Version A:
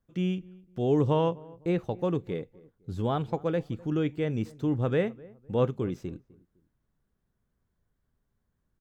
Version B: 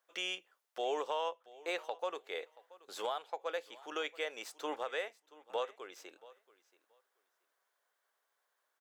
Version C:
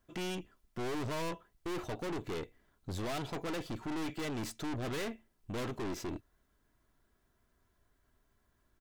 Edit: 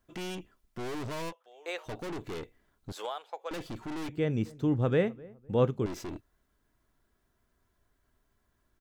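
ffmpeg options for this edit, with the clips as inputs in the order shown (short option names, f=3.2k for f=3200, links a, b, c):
-filter_complex "[1:a]asplit=2[a][b];[2:a]asplit=4[c][d][e][f];[c]atrim=end=1.33[g];[a]atrim=start=1.29:end=1.89[h];[d]atrim=start=1.85:end=2.922[i];[b]atrim=start=2.918:end=3.512[j];[e]atrim=start=3.508:end=4.092[k];[0:a]atrim=start=4.088:end=5.862[l];[f]atrim=start=5.858[m];[g][h]acrossfade=d=0.04:c1=tri:c2=tri[n];[n][i]acrossfade=d=0.04:c1=tri:c2=tri[o];[o][j]acrossfade=d=0.004:c1=hsin:c2=hsin[p];[p][k]acrossfade=d=0.004:c1=hsin:c2=hsin[q];[q][l]acrossfade=d=0.004:c1=hsin:c2=hsin[r];[r][m]acrossfade=d=0.004:c1=hsin:c2=hsin"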